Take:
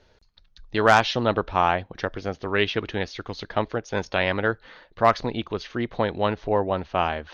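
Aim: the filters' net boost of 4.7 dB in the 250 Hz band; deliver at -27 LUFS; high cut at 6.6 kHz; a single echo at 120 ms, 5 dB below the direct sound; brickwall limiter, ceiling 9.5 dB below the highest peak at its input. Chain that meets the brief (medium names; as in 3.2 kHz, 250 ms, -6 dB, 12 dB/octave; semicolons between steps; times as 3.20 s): low-pass 6.6 kHz; peaking EQ 250 Hz +6 dB; peak limiter -13.5 dBFS; delay 120 ms -5 dB; trim -0.5 dB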